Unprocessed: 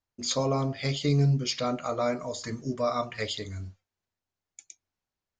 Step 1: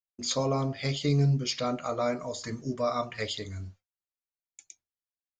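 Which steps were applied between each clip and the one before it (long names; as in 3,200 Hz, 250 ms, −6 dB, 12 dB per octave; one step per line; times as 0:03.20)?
noise gate with hold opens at −40 dBFS
level −1 dB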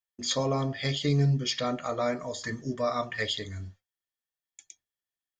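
hollow resonant body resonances 1,800/3,300 Hz, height 14 dB, ringing for 35 ms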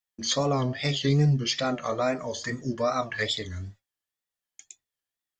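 tape wow and flutter 110 cents
level +2.5 dB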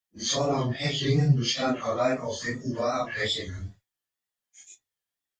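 random phases in long frames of 100 ms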